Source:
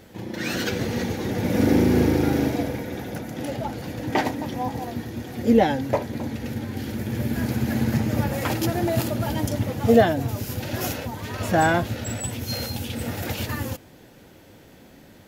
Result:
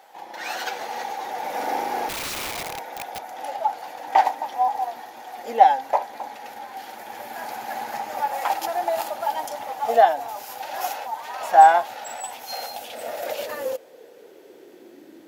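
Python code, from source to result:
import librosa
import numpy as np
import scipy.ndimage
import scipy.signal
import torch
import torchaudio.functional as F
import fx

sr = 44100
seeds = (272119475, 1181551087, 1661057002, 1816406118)

y = fx.filter_sweep_highpass(x, sr, from_hz=800.0, to_hz=320.0, start_s=12.4, end_s=15.16, q=6.1)
y = fx.overflow_wrap(y, sr, gain_db=22.0, at=(2.08, 3.23), fade=0.02)
y = F.gain(torch.from_numpy(y), -3.5).numpy()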